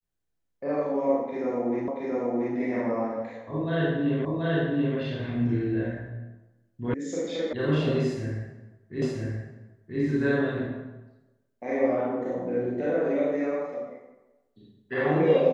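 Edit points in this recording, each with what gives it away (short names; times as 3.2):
1.88 repeat of the last 0.68 s
4.25 repeat of the last 0.73 s
6.94 sound cut off
7.53 sound cut off
9.02 repeat of the last 0.98 s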